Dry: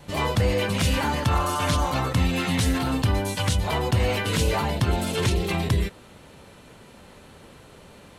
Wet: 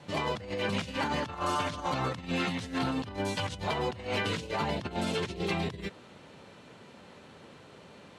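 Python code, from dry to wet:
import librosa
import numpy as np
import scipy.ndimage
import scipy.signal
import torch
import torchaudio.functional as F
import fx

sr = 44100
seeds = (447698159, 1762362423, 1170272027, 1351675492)

y = fx.over_compress(x, sr, threshold_db=-25.0, ratio=-0.5)
y = fx.bandpass_edges(y, sr, low_hz=120.0, high_hz=6200.0)
y = y * 10.0 ** (-5.5 / 20.0)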